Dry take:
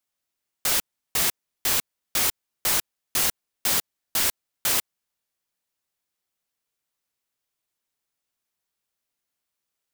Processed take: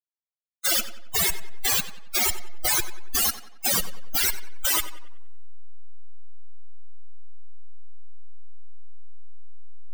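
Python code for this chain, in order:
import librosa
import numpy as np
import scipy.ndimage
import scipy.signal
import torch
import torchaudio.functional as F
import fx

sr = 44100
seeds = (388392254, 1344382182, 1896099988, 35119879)

p1 = fx.delta_hold(x, sr, step_db=-26.5)
p2 = fx.spec_topn(p1, sr, count=64)
p3 = fx.leveller(p2, sr, passes=3)
p4 = p3 + fx.echo_tape(p3, sr, ms=93, feedback_pct=47, wet_db=-10.0, lp_hz=4000.0, drive_db=21.0, wow_cents=25, dry=0)
y = p4 * librosa.db_to_amplitude(1.5)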